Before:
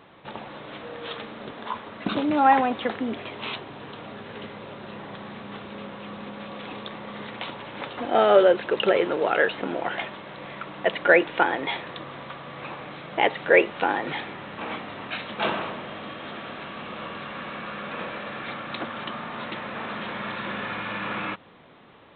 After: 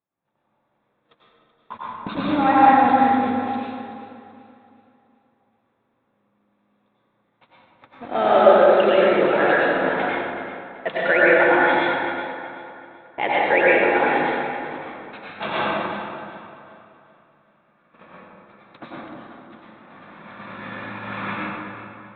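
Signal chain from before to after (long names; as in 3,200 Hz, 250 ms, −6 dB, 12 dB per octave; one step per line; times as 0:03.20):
notch filter 3,000 Hz, Q 11
noise gate −30 dBFS, range −35 dB
parametric band 410 Hz −3.5 dB 0.77 octaves
on a send: delay that swaps between a low-pass and a high-pass 190 ms, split 880 Hz, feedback 64%, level −6.5 dB
on the sum: dense smooth reverb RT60 2.1 s, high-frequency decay 0.55×, pre-delay 80 ms, DRR −7 dB
one half of a high-frequency compander decoder only
level −2.5 dB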